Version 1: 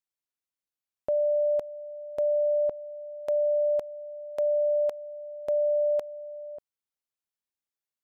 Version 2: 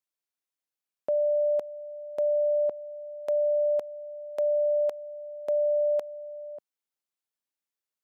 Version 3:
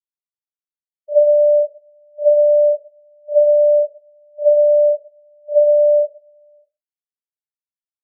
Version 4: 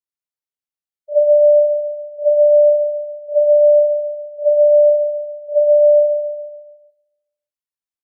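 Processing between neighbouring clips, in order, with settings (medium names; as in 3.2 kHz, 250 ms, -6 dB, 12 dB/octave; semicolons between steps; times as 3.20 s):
high-pass 180 Hz
Schroeder reverb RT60 0.74 s, combs from 28 ms, DRR -7 dB; spectral contrast expander 2.5:1; trim +8 dB
feedback delay 142 ms, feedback 52%, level -7 dB; trim -1.5 dB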